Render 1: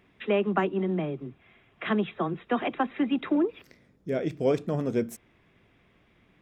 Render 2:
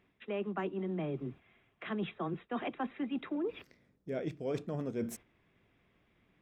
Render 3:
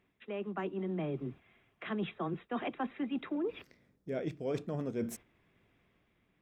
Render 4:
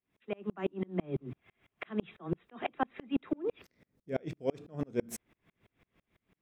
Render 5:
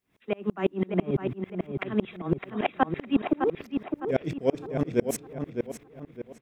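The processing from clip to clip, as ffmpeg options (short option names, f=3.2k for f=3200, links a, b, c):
-af "areverse,acompressor=threshold=-34dB:ratio=5,areverse,agate=range=-8dB:threshold=-49dB:ratio=16:detection=peak,highshelf=f=8.2k:g=-4.5"
-af "dynaudnorm=f=110:g=11:m=3.5dB,volume=-3dB"
-af "aeval=exprs='val(0)*pow(10,-35*if(lt(mod(-6*n/s,1),2*abs(-6)/1000),1-mod(-6*n/s,1)/(2*abs(-6)/1000),(mod(-6*n/s,1)-2*abs(-6)/1000)/(1-2*abs(-6)/1000))/20)':c=same,volume=8.5dB"
-filter_complex "[0:a]asplit=2[a][b];[b]adelay=609,lowpass=f=3.7k:p=1,volume=-6dB,asplit=2[c][d];[d]adelay=609,lowpass=f=3.7k:p=1,volume=0.38,asplit=2[e][f];[f]adelay=609,lowpass=f=3.7k:p=1,volume=0.38,asplit=2[g][h];[h]adelay=609,lowpass=f=3.7k:p=1,volume=0.38,asplit=2[i][j];[j]adelay=609,lowpass=f=3.7k:p=1,volume=0.38[k];[a][c][e][g][i][k]amix=inputs=6:normalize=0,volume=8dB"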